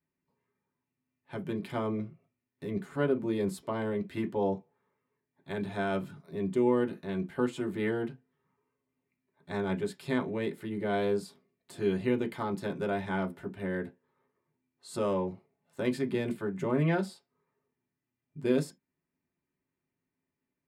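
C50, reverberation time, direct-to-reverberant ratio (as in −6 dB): 25.5 dB, non-exponential decay, 1.0 dB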